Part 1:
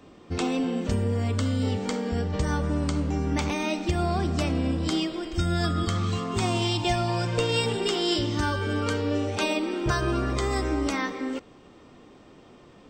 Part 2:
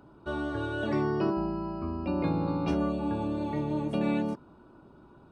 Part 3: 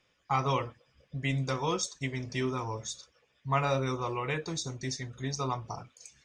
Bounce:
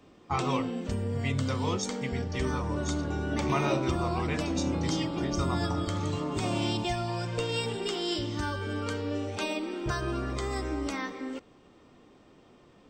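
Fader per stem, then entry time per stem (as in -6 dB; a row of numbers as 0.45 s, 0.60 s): -6.0 dB, -4.5 dB, -2.0 dB; 0.00 s, 2.50 s, 0.00 s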